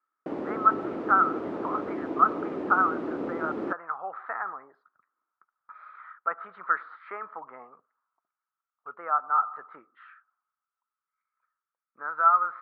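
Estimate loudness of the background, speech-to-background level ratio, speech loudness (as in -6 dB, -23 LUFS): -34.0 LUFS, 6.5 dB, -27.5 LUFS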